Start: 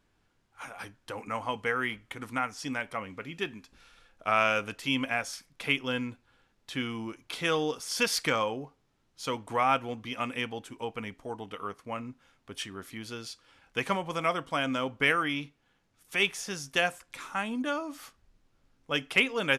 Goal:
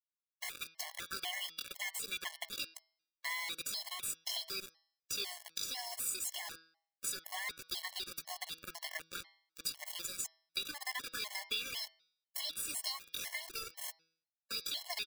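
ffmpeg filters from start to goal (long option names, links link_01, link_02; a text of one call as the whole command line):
ffmpeg -i in.wav -filter_complex "[0:a]acrossover=split=240[link_01][link_02];[link_02]acompressor=threshold=-38dB:ratio=3[link_03];[link_01][link_03]amix=inputs=2:normalize=0,equalizer=frequency=11000:width=0.68:gain=-9,acrusher=bits=9:mode=log:mix=0:aa=0.000001,asetrate=68011,aresample=44100,atempo=0.64842,aderivative,aecho=1:1:2.9:0.5,asplit=2[link_04][link_05];[link_05]aecho=0:1:148:0.126[link_06];[link_04][link_06]amix=inputs=2:normalize=0,acrusher=bits=7:mix=0:aa=0.000001,acompressor=threshold=-50dB:ratio=3,atempo=1.3,bandreject=frequency=162.6:width_type=h:width=4,bandreject=frequency=325.2:width_type=h:width=4,bandreject=frequency=487.8:width_type=h:width=4,bandreject=frequency=650.4:width_type=h:width=4,bandreject=frequency=813:width_type=h:width=4,bandreject=frequency=975.6:width_type=h:width=4,bandreject=frequency=1138.2:width_type=h:width=4,bandreject=frequency=1300.8:width_type=h:width=4,bandreject=frequency=1463.4:width_type=h:width=4,bandreject=frequency=1626:width_type=h:width=4,bandreject=frequency=1788.6:width_type=h:width=4,bandreject=frequency=1951.2:width_type=h:width=4,bandreject=frequency=2113.8:width_type=h:width=4,bandreject=frequency=2276.4:width_type=h:width=4,bandreject=frequency=2439:width_type=h:width=4,bandreject=frequency=2601.6:width_type=h:width=4,bandreject=frequency=2764.2:width_type=h:width=4,bandreject=frequency=2926.8:width_type=h:width=4,bandreject=frequency=3089.4:width_type=h:width=4,bandreject=frequency=3252:width_type=h:width=4,bandreject=frequency=3414.6:width_type=h:width=4,bandreject=frequency=3577.2:width_type=h:width=4,bandreject=frequency=3739.8:width_type=h:width=4,bandreject=frequency=3902.4:width_type=h:width=4,bandreject=frequency=4065:width_type=h:width=4,bandreject=frequency=4227.6:width_type=h:width=4,bandreject=frequency=4390.2:width_type=h:width=4,bandreject=frequency=4552.8:width_type=h:width=4,bandreject=frequency=4715.4:width_type=h:width=4,bandreject=frequency=4878:width_type=h:width=4,bandreject=frequency=5040.6:width_type=h:width=4,bandreject=frequency=5203.2:width_type=h:width=4,bandreject=frequency=5365.8:width_type=h:width=4,bandreject=frequency=5528.4:width_type=h:width=4,bandreject=frequency=5691:width_type=h:width=4,bandreject=frequency=5853.6:width_type=h:width=4,afftfilt=real='re*gt(sin(2*PI*2*pts/sr)*(1-2*mod(floor(b*sr/1024/560),2)),0)':imag='im*gt(sin(2*PI*2*pts/sr)*(1-2*mod(floor(b*sr/1024/560),2)),0)':win_size=1024:overlap=0.75,volume=15.5dB" out.wav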